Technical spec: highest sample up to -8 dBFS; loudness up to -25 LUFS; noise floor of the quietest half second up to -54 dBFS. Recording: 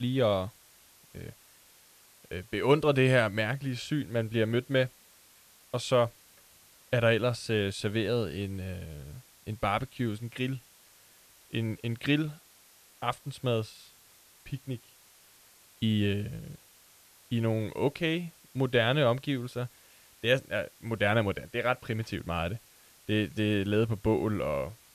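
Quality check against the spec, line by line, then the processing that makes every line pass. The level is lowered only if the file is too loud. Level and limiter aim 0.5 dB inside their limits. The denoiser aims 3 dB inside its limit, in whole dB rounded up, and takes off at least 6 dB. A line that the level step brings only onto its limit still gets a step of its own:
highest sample -11.0 dBFS: OK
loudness -30.0 LUFS: OK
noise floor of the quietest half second -59 dBFS: OK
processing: none

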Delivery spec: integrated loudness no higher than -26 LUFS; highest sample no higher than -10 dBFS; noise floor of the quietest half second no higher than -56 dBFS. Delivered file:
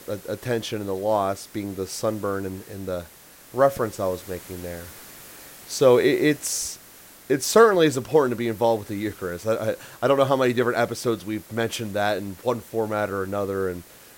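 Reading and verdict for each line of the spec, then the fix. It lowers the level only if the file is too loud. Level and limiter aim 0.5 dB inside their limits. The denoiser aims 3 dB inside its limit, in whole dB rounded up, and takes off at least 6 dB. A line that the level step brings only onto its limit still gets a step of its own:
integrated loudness -23.5 LUFS: fail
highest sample -4.5 dBFS: fail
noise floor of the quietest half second -48 dBFS: fail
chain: denoiser 8 dB, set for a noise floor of -48 dBFS; gain -3 dB; limiter -10.5 dBFS

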